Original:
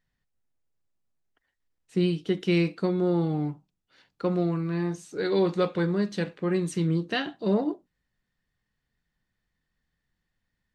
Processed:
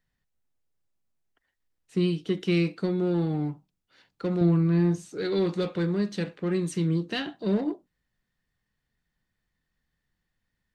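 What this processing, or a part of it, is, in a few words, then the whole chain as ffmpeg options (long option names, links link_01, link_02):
one-band saturation: -filter_complex "[0:a]acrossover=split=440|2000[link_01][link_02][link_03];[link_02]asoftclip=type=tanh:threshold=-36dB[link_04];[link_01][link_04][link_03]amix=inputs=3:normalize=0,asettb=1/sr,asplit=3[link_05][link_06][link_07];[link_05]atrim=end=4.414[link_08];[link_06]atrim=start=4.41:end=5.09,asetpts=PTS-STARTPTS,afade=type=in:duration=0.004:curve=qsin,afade=type=out:start_time=0.676:duration=0.004:curve=qsin,lowshelf=frequency=350:gain=9[link_09];[link_07]atrim=start=5.086[link_10];[link_08][link_09]acrossfade=duration=0.004:curve1=hsin:curve2=qsin[link_11];[link_11][link_10]acrossfade=duration=0.004:curve1=qsin:curve2=hsin"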